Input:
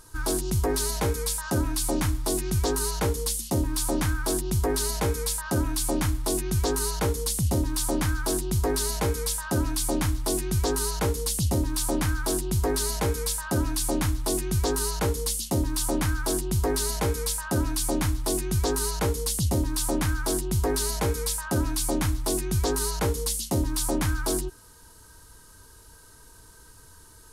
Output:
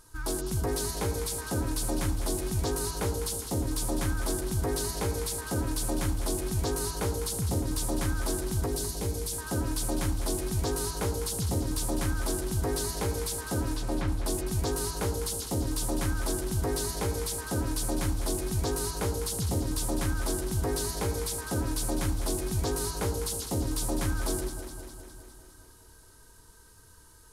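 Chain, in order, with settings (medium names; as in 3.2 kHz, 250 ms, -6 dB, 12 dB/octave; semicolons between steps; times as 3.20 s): 8.66–9.33 s: peaking EQ 1.3 kHz -10.5 dB 2 oct; 13.71–14.21 s: low-pass 4.7 kHz -> 2.4 kHz 12 dB/octave; echo whose repeats swap between lows and highs 102 ms, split 900 Hz, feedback 80%, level -7 dB; trim -5.5 dB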